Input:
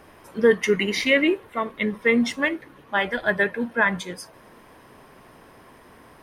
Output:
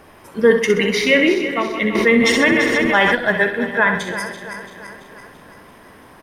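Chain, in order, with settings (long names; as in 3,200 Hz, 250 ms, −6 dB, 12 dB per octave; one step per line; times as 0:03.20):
feedback delay that plays each chunk backwards 168 ms, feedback 73%, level −10 dB
repeating echo 65 ms, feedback 47%, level −9.5 dB
0:01.95–0:03.15: envelope flattener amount 70%
level +4 dB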